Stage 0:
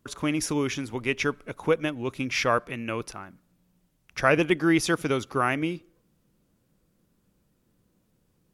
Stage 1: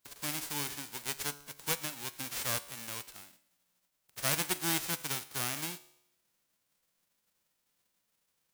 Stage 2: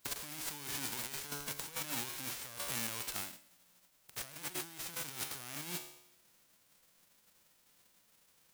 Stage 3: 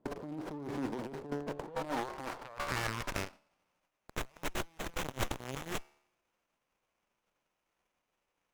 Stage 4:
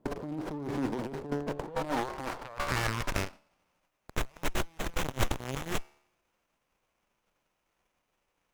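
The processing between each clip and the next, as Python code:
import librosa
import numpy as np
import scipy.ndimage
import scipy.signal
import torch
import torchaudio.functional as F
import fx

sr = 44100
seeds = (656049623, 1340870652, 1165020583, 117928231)

y1 = fx.envelope_flatten(x, sr, power=0.1)
y1 = fx.comb_fb(y1, sr, f0_hz=72.0, decay_s=0.78, harmonics='all', damping=0.0, mix_pct=50)
y1 = y1 * 10.0 ** (-5.5 / 20.0)
y2 = fx.over_compress(y1, sr, threshold_db=-46.0, ratio=-1.0)
y2 = y2 * 10.0 ** (2.5 / 20.0)
y3 = fx.wiener(y2, sr, points=25)
y3 = fx.filter_sweep_bandpass(y3, sr, from_hz=330.0, to_hz=5300.0, start_s=1.35, end_s=3.97, q=0.91)
y3 = fx.running_max(y3, sr, window=9)
y3 = y3 * 10.0 ** (14.0 / 20.0)
y4 = fx.low_shelf(y3, sr, hz=120.0, db=5.5)
y4 = y4 * 10.0 ** (4.0 / 20.0)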